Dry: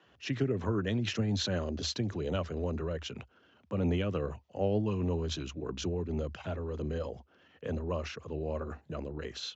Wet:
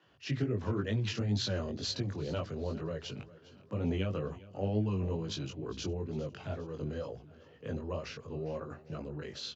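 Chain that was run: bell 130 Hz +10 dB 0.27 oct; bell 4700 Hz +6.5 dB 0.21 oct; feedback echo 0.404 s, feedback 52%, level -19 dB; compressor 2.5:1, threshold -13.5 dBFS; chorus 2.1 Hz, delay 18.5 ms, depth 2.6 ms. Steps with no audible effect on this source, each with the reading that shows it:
compressor, threshold -13.5 dBFS: input peak -15.0 dBFS

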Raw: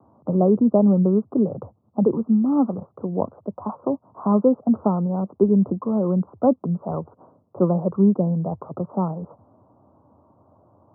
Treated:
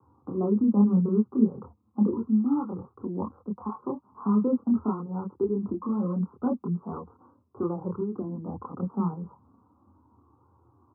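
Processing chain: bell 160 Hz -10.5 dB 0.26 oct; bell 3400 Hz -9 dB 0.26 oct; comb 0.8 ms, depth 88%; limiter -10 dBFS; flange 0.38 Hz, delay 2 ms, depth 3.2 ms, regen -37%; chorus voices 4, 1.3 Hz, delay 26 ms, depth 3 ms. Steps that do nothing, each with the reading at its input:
bell 3400 Hz: input band ends at 1300 Hz

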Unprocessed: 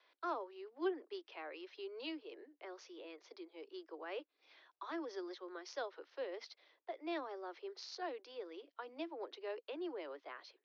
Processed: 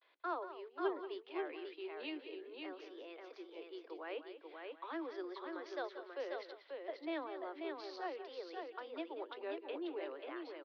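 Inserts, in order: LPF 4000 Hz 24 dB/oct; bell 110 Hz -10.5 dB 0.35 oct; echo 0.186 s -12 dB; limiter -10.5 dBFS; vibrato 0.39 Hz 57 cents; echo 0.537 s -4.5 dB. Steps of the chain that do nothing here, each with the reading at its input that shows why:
bell 110 Hz: input band starts at 240 Hz; limiter -10.5 dBFS: input peak -26.5 dBFS

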